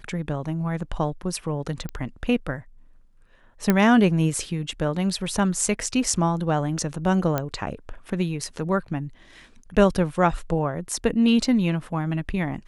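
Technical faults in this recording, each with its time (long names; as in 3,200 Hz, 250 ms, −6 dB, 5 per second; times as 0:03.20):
0:01.89: click −19 dBFS
0:03.70: click −6 dBFS
0:07.38: click −10 dBFS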